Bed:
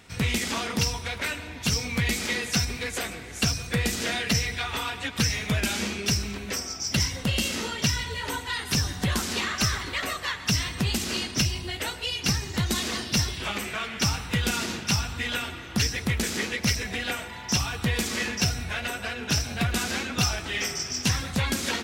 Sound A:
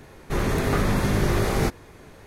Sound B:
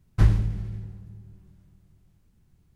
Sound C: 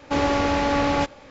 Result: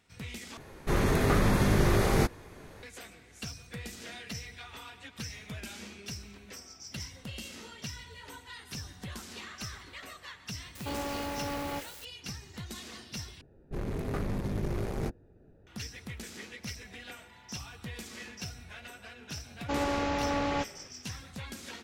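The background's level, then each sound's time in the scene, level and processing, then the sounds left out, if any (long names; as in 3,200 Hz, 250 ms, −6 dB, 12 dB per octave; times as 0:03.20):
bed −16 dB
0:00.57: overwrite with A −2.5 dB
0:10.75: mix in C −14.5 dB + spike at every zero crossing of −22.5 dBFS
0:13.41: overwrite with A −10 dB + adaptive Wiener filter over 41 samples
0:19.58: mix in C −9 dB
not used: B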